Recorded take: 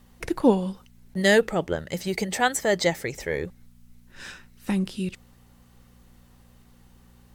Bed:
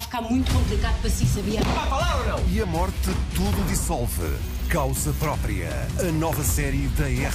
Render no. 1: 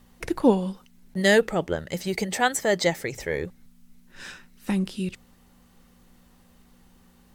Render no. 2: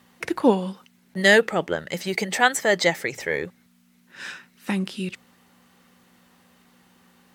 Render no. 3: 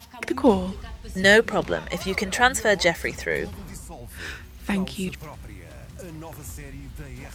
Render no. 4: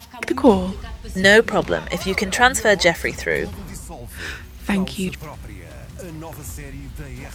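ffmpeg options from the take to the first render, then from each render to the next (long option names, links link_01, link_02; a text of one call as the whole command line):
ffmpeg -i in.wav -af "bandreject=frequency=60:width_type=h:width=4,bandreject=frequency=120:width_type=h:width=4" out.wav
ffmpeg -i in.wav -af "highpass=140,equalizer=frequency=1900:width_type=o:width=2.4:gain=6" out.wav
ffmpeg -i in.wav -i bed.wav -filter_complex "[1:a]volume=-15dB[link_01];[0:a][link_01]amix=inputs=2:normalize=0" out.wav
ffmpeg -i in.wav -af "volume=4.5dB,alimiter=limit=-1dB:level=0:latency=1" out.wav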